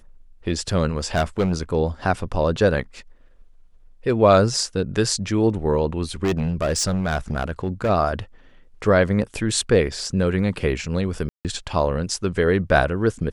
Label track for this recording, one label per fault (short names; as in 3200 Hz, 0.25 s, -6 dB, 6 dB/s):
1.140000	1.540000	clipped -15 dBFS
6.230000	7.900000	clipped -17 dBFS
11.290000	11.450000	gap 0.158 s